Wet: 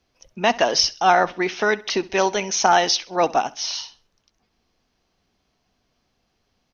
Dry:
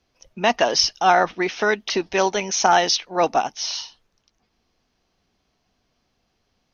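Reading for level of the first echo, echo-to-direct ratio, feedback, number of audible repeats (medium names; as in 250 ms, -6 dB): -20.5 dB, -20.0 dB, 34%, 2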